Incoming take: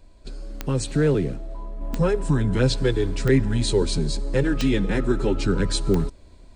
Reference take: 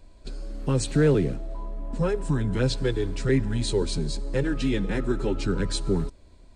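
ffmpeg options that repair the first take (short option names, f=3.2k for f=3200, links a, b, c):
-af "adeclick=t=4,asetnsamples=n=441:p=0,asendcmd='1.81 volume volume -4dB',volume=0dB"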